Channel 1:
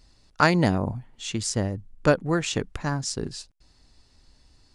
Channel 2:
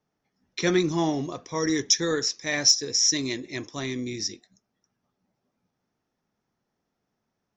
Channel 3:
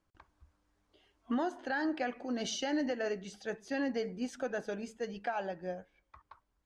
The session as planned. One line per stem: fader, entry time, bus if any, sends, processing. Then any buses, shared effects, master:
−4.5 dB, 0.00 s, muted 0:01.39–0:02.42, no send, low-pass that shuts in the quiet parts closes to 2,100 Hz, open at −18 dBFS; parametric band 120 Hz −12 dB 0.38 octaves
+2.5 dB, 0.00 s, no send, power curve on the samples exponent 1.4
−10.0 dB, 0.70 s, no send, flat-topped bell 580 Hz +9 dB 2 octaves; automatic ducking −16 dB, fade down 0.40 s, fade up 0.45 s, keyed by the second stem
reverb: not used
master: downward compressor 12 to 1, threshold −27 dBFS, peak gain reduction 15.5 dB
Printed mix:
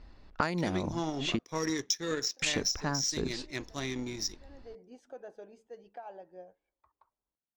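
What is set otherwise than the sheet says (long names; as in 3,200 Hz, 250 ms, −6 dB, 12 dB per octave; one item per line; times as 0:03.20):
stem 1 −4.5 dB → +5.5 dB
stem 3 −10.0 dB → −18.0 dB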